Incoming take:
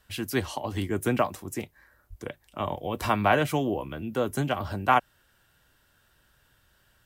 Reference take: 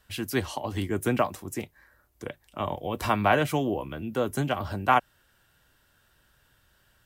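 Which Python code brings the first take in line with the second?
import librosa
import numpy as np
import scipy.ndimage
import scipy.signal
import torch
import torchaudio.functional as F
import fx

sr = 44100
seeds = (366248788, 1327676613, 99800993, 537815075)

y = fx.fix_deplosive(x, sr, at_s=(2.09,))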